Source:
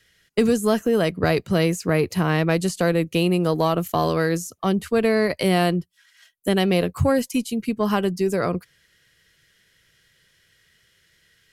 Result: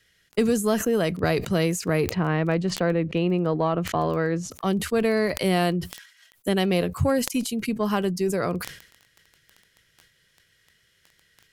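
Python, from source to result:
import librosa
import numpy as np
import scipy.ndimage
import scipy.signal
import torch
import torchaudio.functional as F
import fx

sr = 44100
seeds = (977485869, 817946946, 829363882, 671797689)

y = fx.lowpass(x, sr, hz=2300.0, slope=12, at=(2.11, 4.51))
y = fx.dmg_crackle(y, sr, seeds[0], per_s=10.0, level_db=-30.0)
y = fx.sustainer(y, sr, db_per_s=96.0)
y = y * librosa.db_to_amplitude(-3.0)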